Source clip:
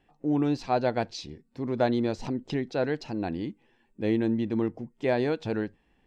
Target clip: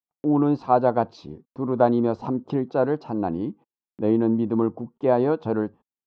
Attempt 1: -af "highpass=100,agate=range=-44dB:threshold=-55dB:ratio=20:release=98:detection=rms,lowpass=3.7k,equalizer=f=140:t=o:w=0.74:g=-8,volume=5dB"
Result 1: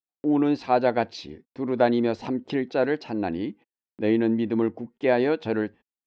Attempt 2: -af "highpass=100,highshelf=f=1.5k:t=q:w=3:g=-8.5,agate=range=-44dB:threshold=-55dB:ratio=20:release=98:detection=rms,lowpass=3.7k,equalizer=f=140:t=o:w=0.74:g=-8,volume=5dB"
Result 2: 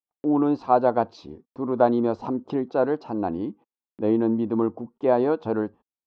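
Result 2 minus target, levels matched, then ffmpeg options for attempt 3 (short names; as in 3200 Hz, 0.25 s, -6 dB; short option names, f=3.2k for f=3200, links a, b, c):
125 Hz band -5.0 dB
-af "highpass=100,highshelf=f=1.5k:t=q:w=3:g=-8.5,agate=range=-44dB:threshold=-55dB:ratio=20:release=98:detection=rms,lowpass=3.7k,volume=5dB"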